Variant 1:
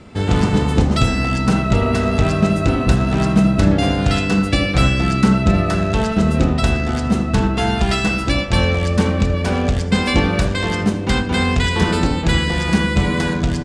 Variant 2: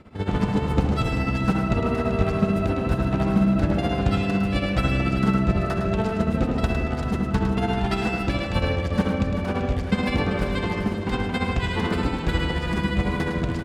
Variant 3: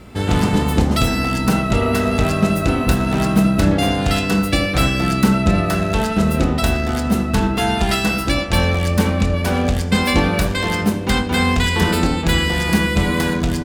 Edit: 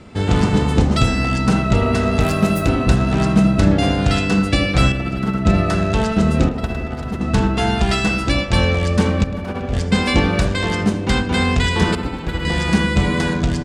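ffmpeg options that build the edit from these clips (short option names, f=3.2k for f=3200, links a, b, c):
-filter_complex "[1:a]asplit=4[a][b][c][d];[0:a]asplit=6[e][f][g][h][i][j];[e]atrim=end=2.202[k];[2:a]atrim=start=2.198:end=2.682[l];[f]atrim=start=2.678:end=4.922[m];[a]atrim=start=4.918:end=5.452[n];[g]atrim=start=5.448:end=6.492[o];[b]atrim=start=6.488:end=7.212[p];[h]atrim=start=7.208:end=9.242[q];[c]atrim=start=9.238:end=9.732[r];[i]atrim=start=9.728:end=11.952[s];[d]atrim=start=11.948:end=12.452[t];[j]atrim=start=12.448[u];[k][l]acrossfade=d=0.004:c1=hsin:c2=hsin[v];[v][m]acrossfade=d=0.004:c1=hsin:c2=hsin[w];[w][n]acrossfade=d=0.004:c1=hsin:c2=hsin[x];[x][o]acrossfade=d=0.004:c1=hsin:c2=hsin[y];[y][p]acrossfade=d=0.004:c1=hsin:c2=hsin[z];[z][q]acrossfade=d=0.004:c1=hsin:c2=hsin[aa];[aa][r]acrossfade=d=0.004:c1=hsin:c2=hsin[ab];[ab][s]acrossfade=d=0.004:c1=hsin:c2=hsin[ac];[ac][t]acrossfade=d=0.004:c1=hsin:c2=hsin[ad];[ad][u]acrossfade=d=0.004:c1=hsin:c2=hsin"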